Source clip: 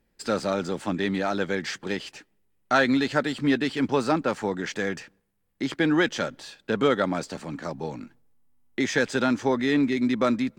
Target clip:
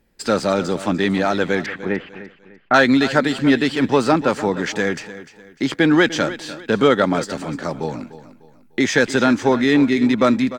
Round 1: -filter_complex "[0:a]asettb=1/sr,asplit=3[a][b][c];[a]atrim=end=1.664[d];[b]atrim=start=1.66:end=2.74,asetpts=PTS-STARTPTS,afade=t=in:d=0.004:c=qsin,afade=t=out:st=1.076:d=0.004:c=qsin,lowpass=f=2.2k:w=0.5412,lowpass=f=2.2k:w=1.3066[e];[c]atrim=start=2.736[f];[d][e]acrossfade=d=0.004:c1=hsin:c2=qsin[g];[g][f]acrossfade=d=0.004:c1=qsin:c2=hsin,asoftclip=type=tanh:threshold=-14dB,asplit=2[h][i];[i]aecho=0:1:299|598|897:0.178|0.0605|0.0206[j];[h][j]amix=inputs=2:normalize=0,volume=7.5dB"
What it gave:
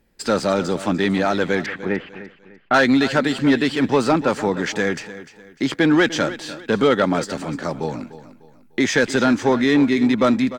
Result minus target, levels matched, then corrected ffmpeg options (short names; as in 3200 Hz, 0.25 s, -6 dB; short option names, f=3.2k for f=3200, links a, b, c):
soft clip: distortion +17 dB
-filter_complex "[0:a]asettb=1/sr,asplit=3[a][b][c];[a]atrim=end=1.664[d];[b]atrim=start=1.66:end=2.74,asetpts=PTS-STARTPTS,afade=t=in:d=0.004:c=qsin,afade=t=out:st=1.076:d=0.004:c=qsin,lowpass=f=2.2k:w=0.5412,lowpass=f=2.2k:w=1.3066[e];[c]atrim=start=2.736[f];[d][e]acrossfade=d=0.004:c1=hsin:c2=qsin[g];[g][f]acrossfade=d=0.004:c1=qsin:c2=hsin,asoftclip=type=tanh:threshold=-3.5dB,asplit=2[h][i];[i]aecho=0:1:299|598|897:0.178|0.0605|0.0206[j];[h][j]amix=inputs=2:normalize=0,volume=7.5dB"